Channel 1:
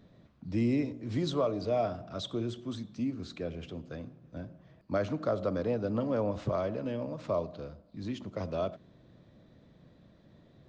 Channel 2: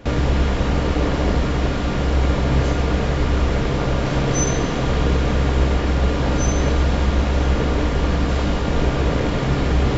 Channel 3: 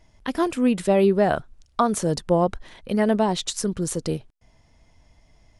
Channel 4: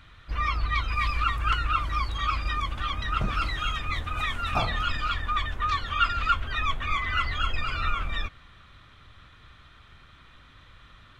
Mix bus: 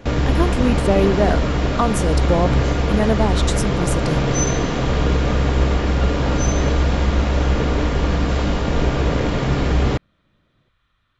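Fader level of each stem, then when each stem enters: −7.5, +0.5, +0.5, −15.5 decibels; 0.00, 0.00, 0.00, 0.00 seconds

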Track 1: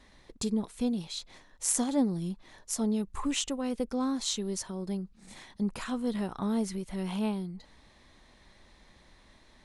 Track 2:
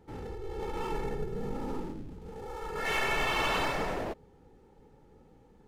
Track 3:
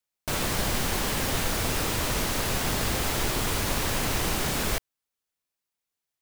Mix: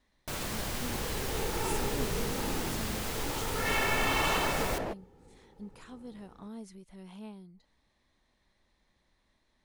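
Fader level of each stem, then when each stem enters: −14.5, 0.0, −8.5 decibels; 0.00, 0.80, 0.00 seconds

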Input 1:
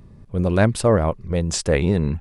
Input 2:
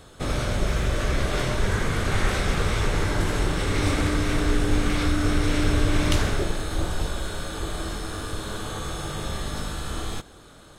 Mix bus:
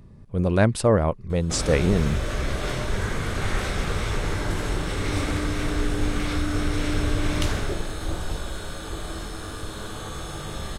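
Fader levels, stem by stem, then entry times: −2.0, −2.5 decibels; 0.00, 1.30 seconds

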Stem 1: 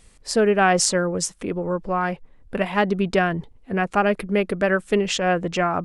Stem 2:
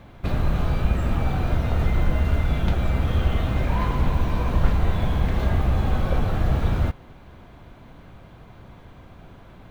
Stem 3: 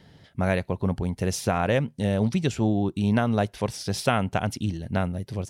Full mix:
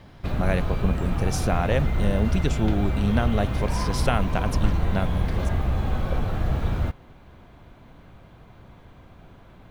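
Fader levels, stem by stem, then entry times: muted, −3.0 dB, −1.5 dB; muted, 0.00 s, 0.00 s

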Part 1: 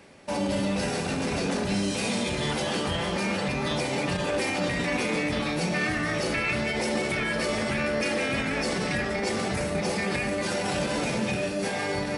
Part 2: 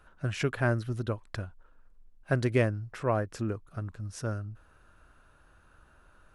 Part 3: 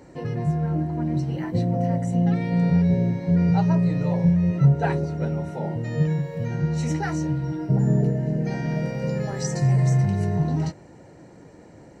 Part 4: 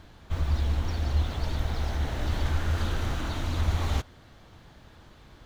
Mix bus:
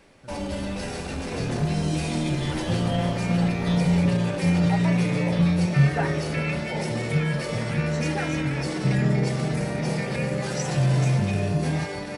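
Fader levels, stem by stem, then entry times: −4.0, −18.0, −2.0, −12.5 decibels; 0.00, 0.00, 1.15, 0.00 seconds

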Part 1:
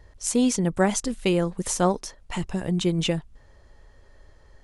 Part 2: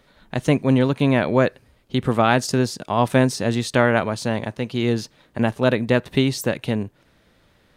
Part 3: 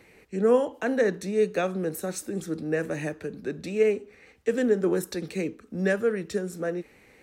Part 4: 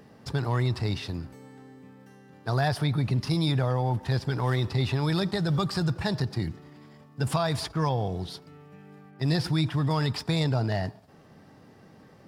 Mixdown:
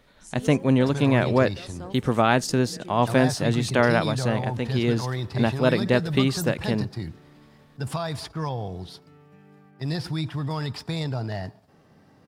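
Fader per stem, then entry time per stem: −19.5, −2.5, −19.0, −3.0 decibels; 0.00, 0.00, 0.00, 0.60 seconds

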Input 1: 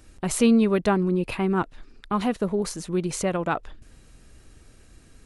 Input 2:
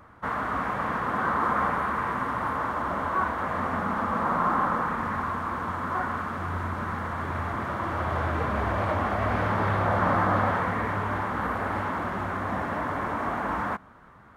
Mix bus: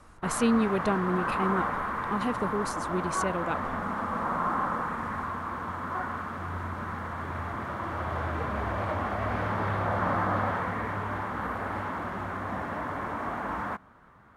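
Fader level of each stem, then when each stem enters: −6.0, −4.0 decibels; 0.00, 0.00 seconds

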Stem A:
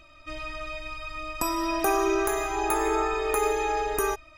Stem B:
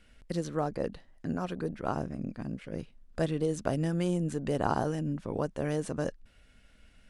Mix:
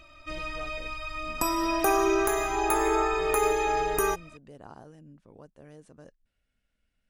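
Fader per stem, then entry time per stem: +0.5, −18.5 decibels; 0.00, 0.00 seconds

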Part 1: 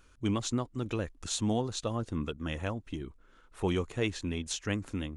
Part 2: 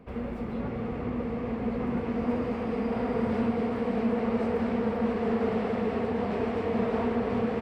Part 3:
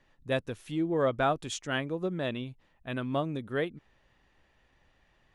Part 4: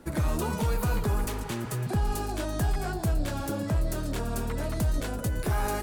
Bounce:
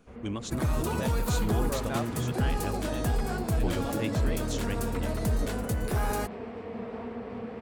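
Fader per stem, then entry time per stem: −4.0, −10.0, −8.0, −1.0 decibels; 0.00, 0.00, 0.70, 0.45 seconds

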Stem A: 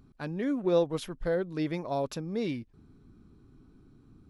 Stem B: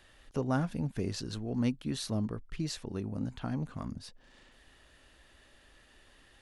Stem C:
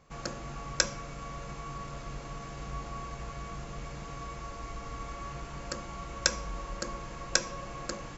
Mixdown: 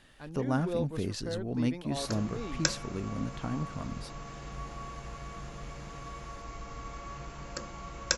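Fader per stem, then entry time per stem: −8.5, +0.5, −2.0 decibels; 0.00, 0.00, 1.85 seconds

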